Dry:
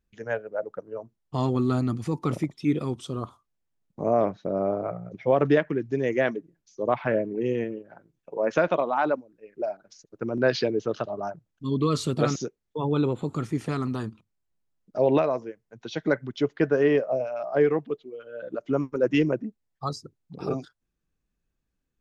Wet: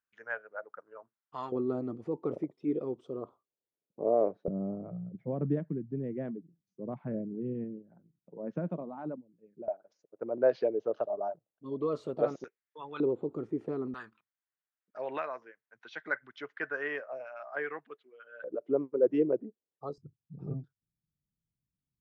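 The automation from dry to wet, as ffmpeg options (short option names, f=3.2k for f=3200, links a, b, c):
-af "asetnsamples=n=441:p=0,asendcmd='1.52 bandpass f 460;4.48 bandpass f 180;9.68 bandpass f 590;12.44 bandpass f 1800;13 bandpass f 410;13.94 bandpass f 1600;18.44 bandpass f 440;19.98 bandpass f 130',bandpass=f=1.4k:t=q:w=2.3:csg=0"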